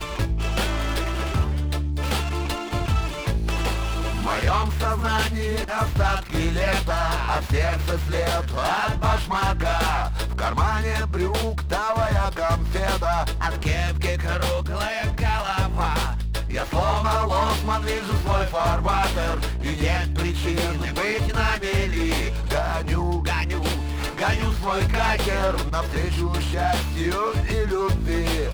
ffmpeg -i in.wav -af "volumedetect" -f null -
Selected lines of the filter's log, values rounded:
mean_volume: -22.6 dB
max_volume: -10.2 dB